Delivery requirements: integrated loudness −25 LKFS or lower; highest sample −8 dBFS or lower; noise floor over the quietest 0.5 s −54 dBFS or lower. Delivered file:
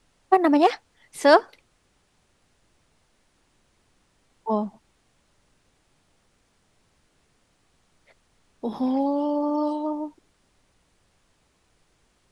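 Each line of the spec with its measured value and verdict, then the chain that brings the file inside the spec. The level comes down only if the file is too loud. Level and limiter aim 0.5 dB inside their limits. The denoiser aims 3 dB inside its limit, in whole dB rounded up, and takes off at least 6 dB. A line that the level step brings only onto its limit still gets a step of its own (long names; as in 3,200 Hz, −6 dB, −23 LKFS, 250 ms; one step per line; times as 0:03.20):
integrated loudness −23.0 LKFS: out of spec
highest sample −3.5 dBFS: out of spec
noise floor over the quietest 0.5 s −66 dBFS: in spec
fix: level −2.5 dB
brickwall limiter −8.5 dBFS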